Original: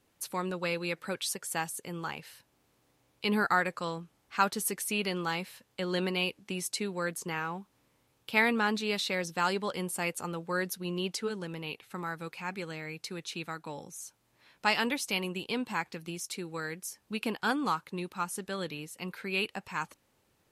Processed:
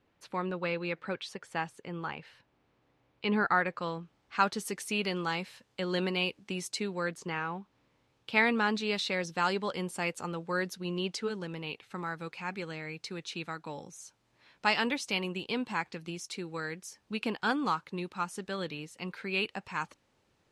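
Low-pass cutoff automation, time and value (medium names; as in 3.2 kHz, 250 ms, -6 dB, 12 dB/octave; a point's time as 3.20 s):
3.53 s 3 kHz
4.78 s 7.2 kHz
6.72 s 7.2 kHz
7.50 s 3.8 kHz
8.64 s 6.5 kHz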